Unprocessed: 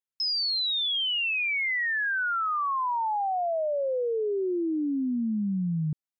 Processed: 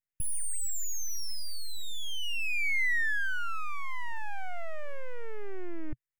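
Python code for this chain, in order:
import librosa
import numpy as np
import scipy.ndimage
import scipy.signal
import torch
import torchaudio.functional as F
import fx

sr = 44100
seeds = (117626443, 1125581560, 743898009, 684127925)

y = np.abs(x)
y = fx.graphic_eq_10(y, sr, hz=(125, 250, 500, 1000, 2000, 4000), db=(10, -6, -8, -9, 11, -12))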